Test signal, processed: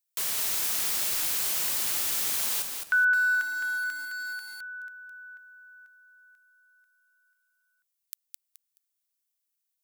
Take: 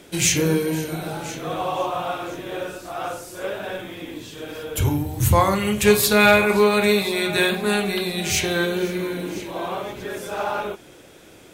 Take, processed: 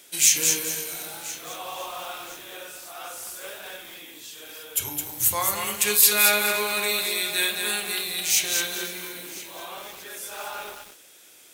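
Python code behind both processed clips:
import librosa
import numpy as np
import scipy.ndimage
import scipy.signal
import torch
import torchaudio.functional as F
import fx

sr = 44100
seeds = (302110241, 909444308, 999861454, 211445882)

y = fx.tilt_eq(x, sr, slope=4.5)
y = fx.echo_crushed(y, sr, ms=213, feedback_pct=35, bits=5, wet_db=-4)
y = y * librosa.db_to_amplitude(-9.5)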